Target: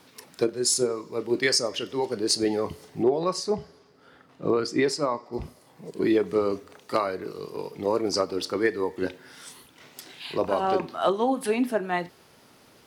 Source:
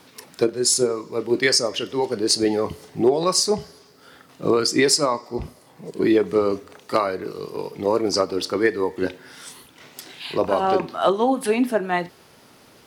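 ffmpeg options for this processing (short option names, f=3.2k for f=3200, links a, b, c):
-filter_complex "[0:a]asettb=1/sr,asplit=3[a][b][c];[a]atrim=end=3.034[d];[b]atrim=start=3.03:end=5.33,asetpts=PTS-STARTPTS,afade=t=in:d=0.004:c=qsin,afade=t=out:st=2.296:d=0.004:c=qsin,lowpass=f=2.1k:p=1[e];[c]atrim=start=5.326[f];[d][e]acrossfade=d=0.004:c1=hsin:c2=qsin[g];[g][f]acrossfade=d=0.004:c1=qsin:c2=hsin,volume=-4.5dB"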